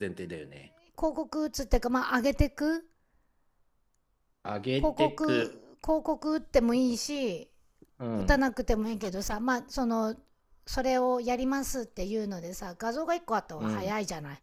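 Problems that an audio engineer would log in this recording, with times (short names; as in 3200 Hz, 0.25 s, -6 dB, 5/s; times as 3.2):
8.82–9.34 clipped -29.5 dBFS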